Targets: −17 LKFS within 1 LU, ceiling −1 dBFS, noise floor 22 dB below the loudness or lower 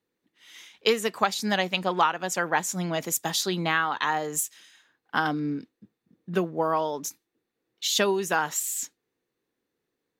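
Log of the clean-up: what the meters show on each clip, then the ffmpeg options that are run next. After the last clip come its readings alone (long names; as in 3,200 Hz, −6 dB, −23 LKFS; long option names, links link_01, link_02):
integrated loudness −26.5 LKFS; sample peak −7.0 dBFS; target loudness −17.0 LKFS
→ -af "volume=9.5dB,alimiter=limit=-1dB:level=0:latency=1"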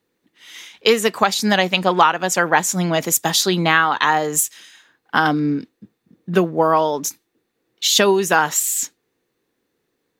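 integrated loudness −17.5 LKFS; sample peak −1.0 dBFS; background noise floor −73 dBFS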